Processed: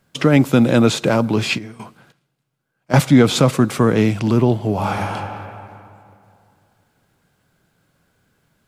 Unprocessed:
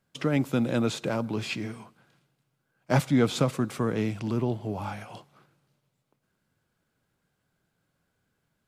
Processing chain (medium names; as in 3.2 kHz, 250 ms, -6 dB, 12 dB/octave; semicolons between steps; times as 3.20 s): 1.57–3.04 s: trance gate ".xx.....x." 92 bpm -12 dB; 4.73–5.14 s: reverb throw, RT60 2.5 s, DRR -0.5 dB; loudness maximiser +13.5 dB; trim -1 dB